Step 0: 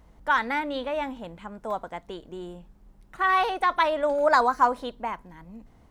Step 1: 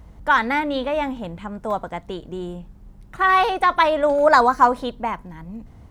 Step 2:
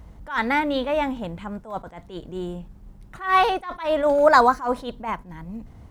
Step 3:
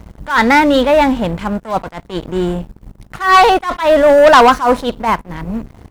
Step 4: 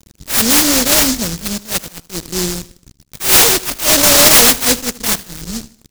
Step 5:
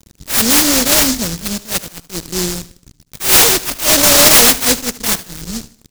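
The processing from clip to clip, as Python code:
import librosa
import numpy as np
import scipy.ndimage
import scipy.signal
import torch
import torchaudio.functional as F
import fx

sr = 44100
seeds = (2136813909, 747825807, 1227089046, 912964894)

y1 = fx.peak_eq(x, sr, hz=92.0, db=9.5, octaves=2.0)
y1 = F.gain(torch.from_numpy(y1), 5.5).numpy()
y2 = fx.quant_float(y1, sr, bits=6)
y2 = fx.attack_slew(y2, sr, db_per_s=150.0)
y3 = fx.leveller(y2, sr, passes=3)
y3 = F.gain(torch.from_numpy(y3), 2.5).numpy()
y4 = np.sign(y3) * np.maximum(np.abs(y3) - 10.0 ** (-30.5 / 20.0), 0.0)
y4 = fx.echo_feedback(y4, sr, ms=77, feedback_pct=41, wet_db=-18)
y4 = fx.noise_mod_delay(y4, sr, seeds[0], noise_hz=5600.0, depth_ms=0.41)
y4 = F.gain(torch.from_numpy(y4), -1.0).numpy()
y5 = y4 + 10.0 ** (-20.0 / 20.0) * np.pad(y4, (int(70 * sr / 1000.0), 0))[:len(y4)]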